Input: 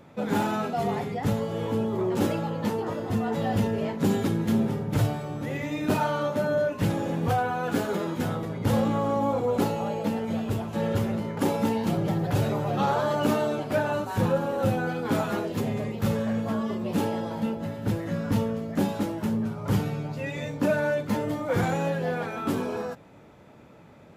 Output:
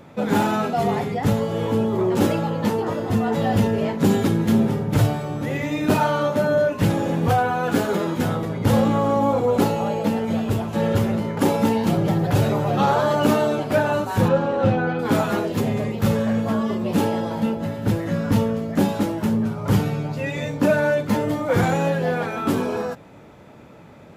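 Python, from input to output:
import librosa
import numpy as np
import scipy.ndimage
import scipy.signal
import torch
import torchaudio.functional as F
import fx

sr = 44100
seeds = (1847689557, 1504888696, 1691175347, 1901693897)

y = fx.lowpass(x, sr, hz=fx.line((14.28, 5500.0), (14.98, 2800.0)), slope=12, at=(14.28, 14.98), fade=0.02)
y = y * 10.0 ** (6.0 / 20.0)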